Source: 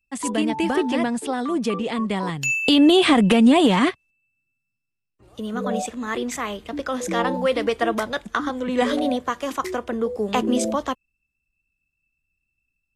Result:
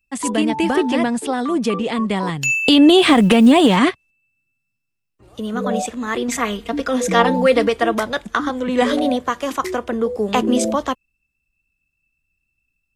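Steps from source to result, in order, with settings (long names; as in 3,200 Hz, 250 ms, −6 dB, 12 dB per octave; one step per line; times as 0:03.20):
0:02.98–0:03.77: mu-law and A-law mismatch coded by A
0:06.28–0:07.68: comb filter 4.3 ms, depth 89%
level +4 dB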